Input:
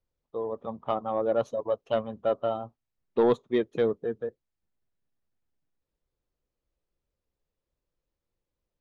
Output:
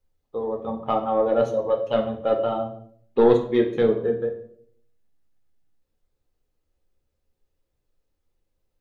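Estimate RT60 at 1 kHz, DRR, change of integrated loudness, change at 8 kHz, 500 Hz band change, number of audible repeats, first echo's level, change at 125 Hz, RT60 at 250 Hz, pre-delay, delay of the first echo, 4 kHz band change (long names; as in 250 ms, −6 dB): 0.50 s, 2.0 dB, +6.0 dB, can't be measured, +6.0 dB, no echo audible, no echo audible, +7.5 dB, 0.80 s, 4 ms, no echo audible, +5.0 dB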